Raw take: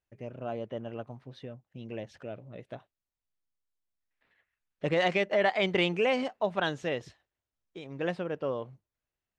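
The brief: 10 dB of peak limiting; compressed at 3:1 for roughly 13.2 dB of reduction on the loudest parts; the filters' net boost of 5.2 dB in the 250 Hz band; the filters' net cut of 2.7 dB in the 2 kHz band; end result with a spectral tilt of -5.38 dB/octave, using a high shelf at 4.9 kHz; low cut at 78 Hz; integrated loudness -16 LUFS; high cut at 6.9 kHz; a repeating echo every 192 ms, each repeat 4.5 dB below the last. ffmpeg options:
-af "highpass=78,lowpass=6900,equalizer=f=250:t=o:g=7.5,equalizer=f=2000:t=o:g=-4.5,highshelf=f=4900:g=7,acompressor=threshold=0.0112:ratio=3,alimiter=level_in=3.16:limit=0.0631:level=0:latency=1,volume=0.316,aecho=1:1:192|384|576|768|960|1152|1344|1536|1728:0.596|0.357|0.214|0.129|0.0772|0.0463|0.0278|0.0167|0.01,volume=25.1"

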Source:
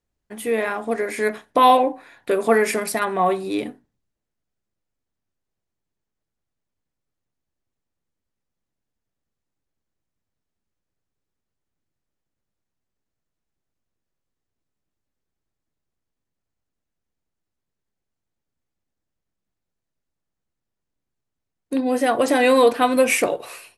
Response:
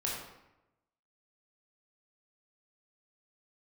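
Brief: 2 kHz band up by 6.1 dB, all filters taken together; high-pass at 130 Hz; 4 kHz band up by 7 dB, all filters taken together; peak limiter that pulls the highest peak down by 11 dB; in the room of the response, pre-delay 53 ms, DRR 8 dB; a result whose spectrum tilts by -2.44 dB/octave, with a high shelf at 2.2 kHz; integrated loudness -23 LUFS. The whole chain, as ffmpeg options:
-filter_complex "[0:a]highpass=130,equalizer=f=2000:t=o:g=4.5,highshelf=f=2200:g=3.5,equalizer=f=4000:t=o:g=4,alimiter=limit=0.224:level=0:latency=1,asplit=2[s0][s1];[1:a]atrim=start_sample=2205,adelay=53[s2];[s1][s2]afir=irnorm=-1:irlink=0,volume=0.237[s3];[s0][s3]amix=inputs=2:normalize=0,volume=0.944"

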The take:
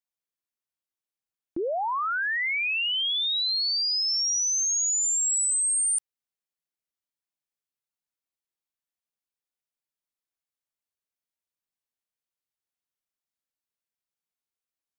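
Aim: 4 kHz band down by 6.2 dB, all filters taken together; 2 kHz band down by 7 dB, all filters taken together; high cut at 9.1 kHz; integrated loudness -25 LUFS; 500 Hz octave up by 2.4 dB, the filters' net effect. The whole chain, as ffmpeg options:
-af "lowpass=9100,equalizer=f=500:t=o:g=3.5,equalizer=f=2000:t=o:g=-7.5,equalizer=f=4000:t=o:g=-6,volume=1.26"

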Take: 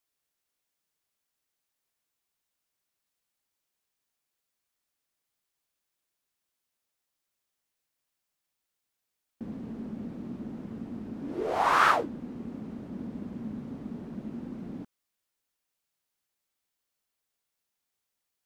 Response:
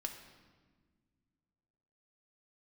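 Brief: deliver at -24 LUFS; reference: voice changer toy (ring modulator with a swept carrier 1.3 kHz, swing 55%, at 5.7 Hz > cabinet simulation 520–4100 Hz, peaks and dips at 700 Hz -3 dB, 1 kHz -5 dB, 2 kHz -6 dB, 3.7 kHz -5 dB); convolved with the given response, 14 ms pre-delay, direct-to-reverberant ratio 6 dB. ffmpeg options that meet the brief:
-filter_complex "[0:a]asplit=2[s0][s1];[1:a]atrim=start_sample=2205,adelay=14[s2];[s1][s2]afir=irnorm=-1:irlink=0,volume=0.562[s3];[s0][s3]amix=inputs=2:normalize=0,aeval=exprs='val(0)*sin(2*PI*1300*n/s+1300*0.55/5.7*sin(2*PI*5.7*n/s))':c=same,highpass=520,equalizer=f=700:t=q:w=4:g=-3,equalizer=f=1000:t=q:w=4:g=-5,equalizer=f=2000:t=q:w=4:g=-6,equalizer=f=3700:t=q:w=4:g=-5,lowpass=f=4100:w=0.5412,lowpass=f=4100:w=1.3066,volume=4.22"

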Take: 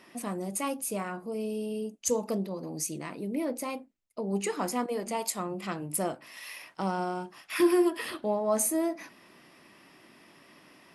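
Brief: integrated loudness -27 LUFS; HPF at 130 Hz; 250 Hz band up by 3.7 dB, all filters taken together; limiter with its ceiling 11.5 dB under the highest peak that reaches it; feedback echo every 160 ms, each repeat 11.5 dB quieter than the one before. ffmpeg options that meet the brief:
-af "highpass=130,equalizer=f=250:t=o:g=6,alimiter=limit=0.0668:level=0:latency=1,aecho=1:1:160|320|480:0.266|0.0718|0.0194,volume=2"

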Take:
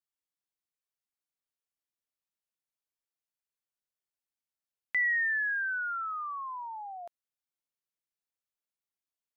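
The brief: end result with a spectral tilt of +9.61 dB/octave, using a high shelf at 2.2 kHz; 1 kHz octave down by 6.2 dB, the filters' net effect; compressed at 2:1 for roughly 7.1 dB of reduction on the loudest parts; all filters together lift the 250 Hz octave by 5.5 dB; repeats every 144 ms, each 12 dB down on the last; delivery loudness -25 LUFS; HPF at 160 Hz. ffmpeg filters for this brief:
-af "highpass=160,equalizer=f=250:t=o:g=8.5,equalizer=f=1000:t=o:g=-7,highshelf=f=2200:g=-6.5,acompressor=threshold=0.00631:ratio=2,aecho=1:1:144|288|432:0.251|0.0628|0.0157,volume=6.31"

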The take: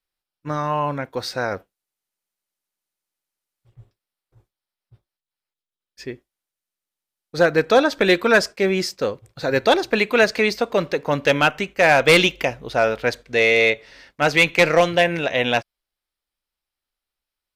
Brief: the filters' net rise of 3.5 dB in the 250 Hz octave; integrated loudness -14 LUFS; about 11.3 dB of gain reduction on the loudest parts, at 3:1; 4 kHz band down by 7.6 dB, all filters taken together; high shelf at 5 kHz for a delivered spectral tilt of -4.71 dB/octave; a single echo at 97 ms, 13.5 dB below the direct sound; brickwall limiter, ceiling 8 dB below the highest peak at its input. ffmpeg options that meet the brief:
-af "equalizer=f=250:t=o:g=5,equalizer=f=4000:t=o:g=-7,highshelf=f=5000:g=-7.5,acompressor=threshold=0.0501:ratio=3,alimiter=limit=0.106:level=0:latency=1,aecho=1:1:97:0.211,volume=7.08"

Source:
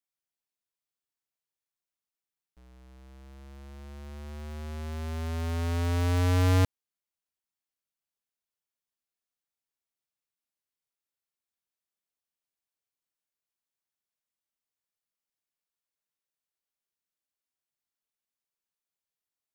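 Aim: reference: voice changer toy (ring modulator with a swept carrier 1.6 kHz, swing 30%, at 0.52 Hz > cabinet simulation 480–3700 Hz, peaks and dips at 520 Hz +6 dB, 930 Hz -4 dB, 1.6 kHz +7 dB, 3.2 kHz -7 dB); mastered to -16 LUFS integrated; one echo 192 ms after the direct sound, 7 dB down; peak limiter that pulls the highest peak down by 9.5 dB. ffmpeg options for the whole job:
-af "alimiter=level_in=1.88:limit=0.0631:level=0:latency=1,volume=0.531,aecho=1:1:192:0.447,aeval=exprs='val(0)*sin(2*PI*1600*n/s+1600*0.3/0.52*sin(2*PI*0.52*n/s))':c=same,highpass=480,equalizer=f=520:t=q:w=4:g=6,equalizer=f=930:t=q:w=4:g=-4,equalizer=f=1600:t=q:w=4:g=7,equalizer=f=3200:t=q:w=4:g=-7,lowpass=f=3700:w=0.5412,lowpass=f=3700:w=1.3066,volume=5.01"

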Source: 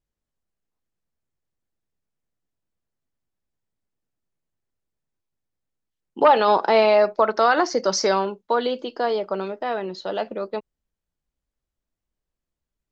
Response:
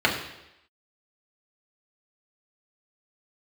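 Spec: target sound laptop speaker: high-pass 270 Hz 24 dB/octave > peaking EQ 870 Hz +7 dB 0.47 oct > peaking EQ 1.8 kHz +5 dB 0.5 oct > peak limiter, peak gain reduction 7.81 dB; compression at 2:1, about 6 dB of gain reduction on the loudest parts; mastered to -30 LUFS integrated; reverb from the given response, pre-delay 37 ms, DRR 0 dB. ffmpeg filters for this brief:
-filter_complex "[0:a]acompressor=threshold=0.0891:ratio=2,asplit=2[s0][s1];[1:a]atrim=start_sample=2205,adelay=37[s2];[s1][s2]afir=irnorm=-1:irlink=0,volume=0.133[s3];[s0][s3]amix=inputs=2:normalize=0,highpass=f=270:w=0.5412,highpass=f=270:w=1.3066,equalizer=f=870:t=o:w=0.47:g=7,equalizer=f=1800:t=o:w=0.5:g=5,volume=0.398,alimiter=limit=0.112:level=0:latency=1"

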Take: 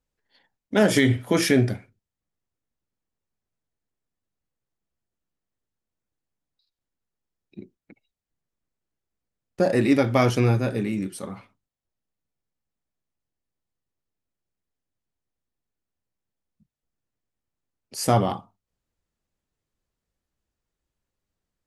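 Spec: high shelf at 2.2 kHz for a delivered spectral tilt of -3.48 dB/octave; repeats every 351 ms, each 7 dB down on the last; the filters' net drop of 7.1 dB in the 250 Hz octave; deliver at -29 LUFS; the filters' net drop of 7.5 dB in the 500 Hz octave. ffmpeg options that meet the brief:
-af "equalizer=f=250:t=o:g=-6.5,equalizer=f=500:t=o:g=-8.5,highshelf=f=2200:g=8,aecho=1:1:351|702|1053|1404|1755:0.447|0.201|0.0905|0.0407|0.0183,volume=0.562"

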